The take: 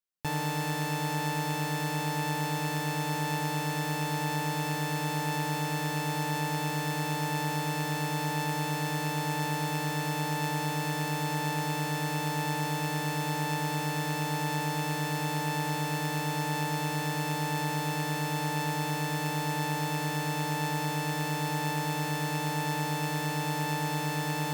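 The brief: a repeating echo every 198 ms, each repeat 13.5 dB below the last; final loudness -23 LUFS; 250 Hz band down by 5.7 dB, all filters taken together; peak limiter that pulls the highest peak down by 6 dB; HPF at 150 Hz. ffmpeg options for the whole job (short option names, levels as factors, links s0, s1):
-af "highpass=150,equalizer=f=250:t=o:g=-7.5,alimiter=limit=0.075:level=0:latency=1,aecho=1:1:198|396:0.211|0.0444,volume=3.35"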